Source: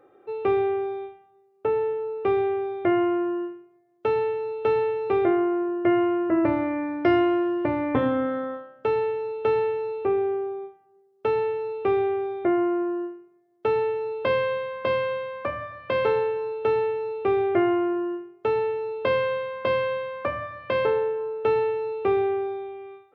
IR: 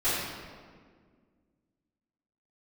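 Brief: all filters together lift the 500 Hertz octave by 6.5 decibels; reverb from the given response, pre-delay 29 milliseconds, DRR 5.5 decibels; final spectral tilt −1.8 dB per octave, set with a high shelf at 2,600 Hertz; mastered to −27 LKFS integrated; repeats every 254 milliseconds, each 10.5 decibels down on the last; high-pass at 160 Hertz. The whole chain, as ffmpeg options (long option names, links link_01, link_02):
-filter_complex "[0:a]highpass=160,equalizer=frequency=500:width_type=o:gain=8.5,highshelf=frequency=2600:gain=-7.5,aecho=1:1:254|508|762:0.299|0.0896|0.0269,asplit=2[link_01][link_02];[1:a]atrim=start_sample=2205,adelay=29[link_03];[link_02][link_03]afir=irnorm=-1:irlink=0,volume=-17.5dB[link_04];[link_01][link_04]amix=inputs=2:normalize=0,volume=-8dB"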